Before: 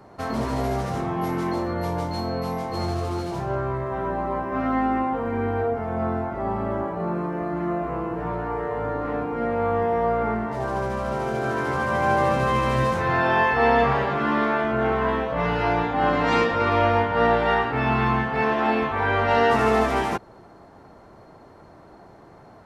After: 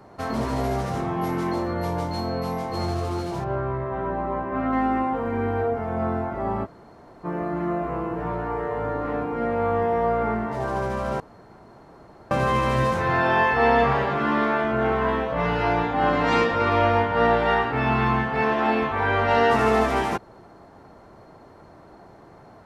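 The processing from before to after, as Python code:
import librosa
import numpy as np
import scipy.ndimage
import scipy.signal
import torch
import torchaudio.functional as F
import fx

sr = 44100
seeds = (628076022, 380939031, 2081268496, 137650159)

y = fx.air_absorb(x, sr, metres=190.0, at=(3.44, 4.73))
y = fx.edit(y, sr, fx.room_tone_fill(start_s=6.65, length_s=0.6, crossfade_s=0.04),
    fx.room_tone_fill(start_s=11.2, length_s=1.11), tone=tone)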